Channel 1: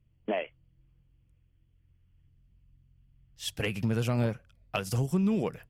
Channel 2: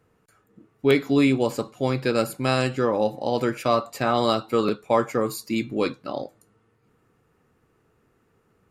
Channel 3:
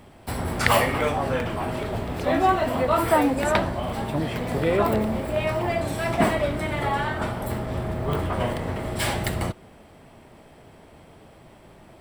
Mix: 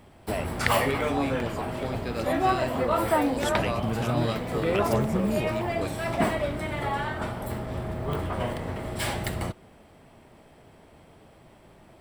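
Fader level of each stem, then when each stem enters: -1.0, -11.0, -4.0 dB; 0.00, 0.00, 0.00 s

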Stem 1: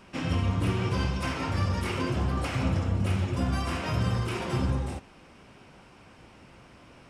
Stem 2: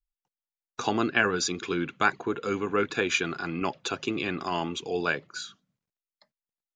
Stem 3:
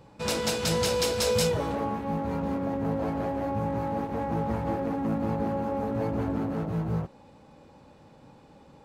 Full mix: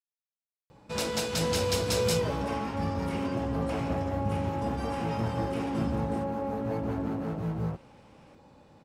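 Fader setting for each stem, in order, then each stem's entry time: -8.0 dB, off, -2.5 dB; 1.25 s, off, 0.70 s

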